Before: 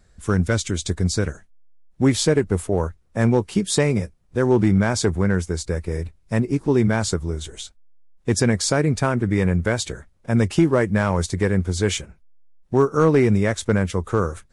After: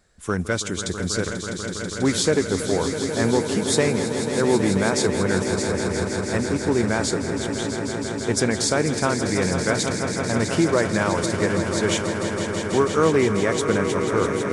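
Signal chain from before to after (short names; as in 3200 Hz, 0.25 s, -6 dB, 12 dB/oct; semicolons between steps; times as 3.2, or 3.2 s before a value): low shelf 170 Hz -12 dB; on a send: swelling echo 0.163 s, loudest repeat 5, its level -10.5 dB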